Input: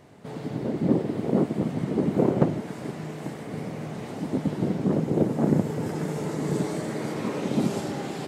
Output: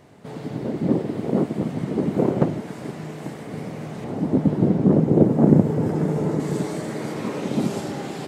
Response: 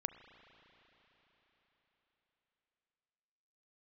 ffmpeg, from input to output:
-filter_complex "[0:a]asettb=1/sr,asplit=3[s0][s1][s2];[s0]atrim=end=4.044[s3];[s1]atrim=start=4.04:end=6.4,asetpts=PTS-STARTPTS,afade=t=in:d=0.004:c=qsin,afade=t=out:st=2.356:d=0.004:c=qsin,tiltshelf=f=1300:g=6.5[s4];[s2]atrim=start=6.396[s5];[s3][s4]acrossfade=d=0.004:c1=hsin:c2=qsin[s6];[s6][s5]acrossfade=d=0.004:c1=qsin:c2=hsin,volume=1.19"

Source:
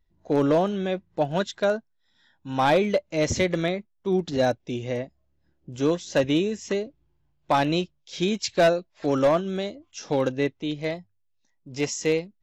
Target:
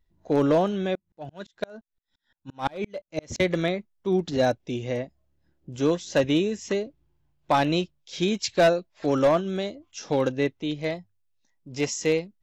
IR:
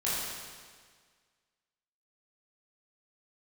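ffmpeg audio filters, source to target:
-filter_complex "[0:a]asettb=1/sr,asplit=3[s0][s1][s2];[s0]atrim=end=0.954[s3];[s1]atrim=start=0.95:end=3.4,asetpts=PTS-STARTPTS,afade=t=in:d=0.004:c=qsin,afade=t=out:st=2.446:d=0.004:c=qsin,aeval=exprs='val(0)*pow(10,-37*if(lt(mod(-5.8*n/s,1),2*abs(-5.8)/1000),1-mod(-5.8*n/s,1)/(2*abs(-5.8)/1000),(mod(-5.8*n/s,1)-2*abs(-5.8)/1000)/(1-2*abs(-5.8)/1000))/20)':c=same[s4];[s2]atrim=start=3.396[s5];[s3][s4]acrossfade=d=0.004:c1=hsin:c2=qsin[s6];[s6][s5]acrossfade=d=0.004:c1=qsin:c2=hsin"

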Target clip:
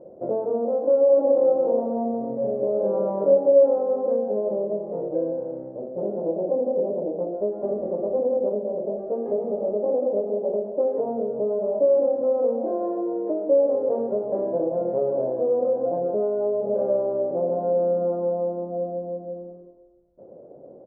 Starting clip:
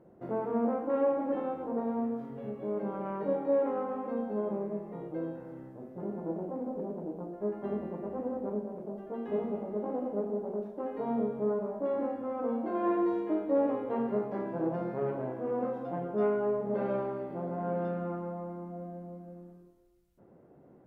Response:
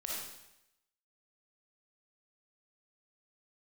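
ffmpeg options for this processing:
-filter_complex "[0:a]lowshelf=f=300:g=-7.5,acompressor=threshold=0.0141:ratio=6,lowpass=f=560:t=q:w=4.9,asplit=3[s0][s1][s2];[s0]afade=t=out:st=1.08:d=0.02[s3];[s1]aecho=1:1:40|86|138.9|199.7|269.7:0.631|0.398|0.251|0.158|0.1,afade=t=in:st=1.08:d=0.02,afade=t=out:st=3.81:d=0.02[s4];[s2]afade=t=in:st=3.81:d=0.02[s5];[s3][s4][s5]amix=inputs=3:normalize=0,volume=2.66"

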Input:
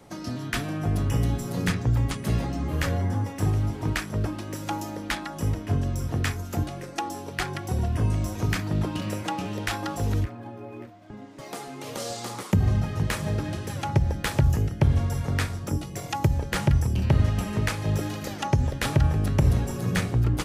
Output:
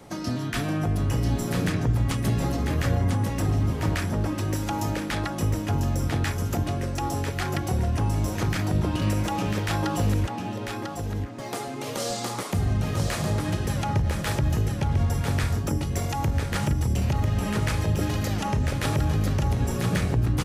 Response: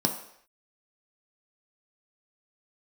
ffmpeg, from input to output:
-filter_complex "[0:a]alimiter=limit=0.0891:level=0:latency=1:release=76,asplit=2[s0][s1];[s1]aecho=0:1:996:0.531[s2];[s0][s2]amix=inputs=2:normalize=0,volume=1.58"

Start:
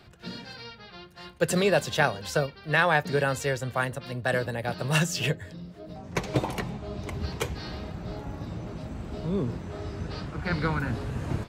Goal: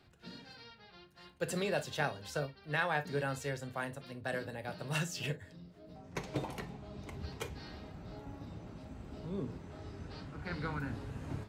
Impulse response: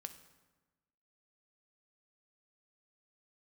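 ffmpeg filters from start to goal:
-filter_complex "[1:a]atrim=start_sample=2205,atrim=end_sample=4410,asetrate=70560,aresample=44100[s0];[0:a][s0]afir=irnorm=-1:irlink=0,volume=0.794"

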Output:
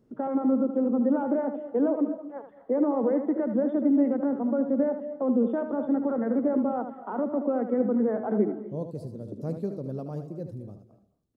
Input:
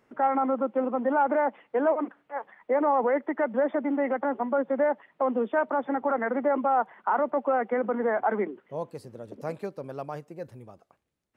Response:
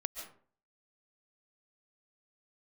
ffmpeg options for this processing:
-filter_complex "[0:a]firequalizer=gain_entry='entry(200,0);entry(820,-19);entry(1400,-21);entry(2100,-27);entry(3900,-14)':delay=0.05:min_phase=1,asplit=2[s0][s1];[1:a]atrim=start_sample=2205,adelay=76[s2];[s1][s2]afir=irnorm=-1:irlink=0,volume=0.422[s3];[s0][s3]amix=inputs=2:normalize=0,volume=2.51"

